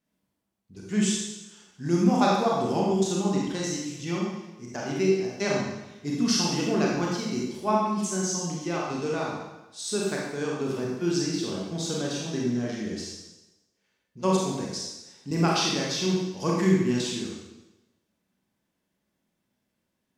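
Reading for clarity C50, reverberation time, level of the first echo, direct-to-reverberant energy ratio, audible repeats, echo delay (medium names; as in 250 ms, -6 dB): -0.5 dB, 1.0 s, no echo, -4.0 dB, no echo, no echo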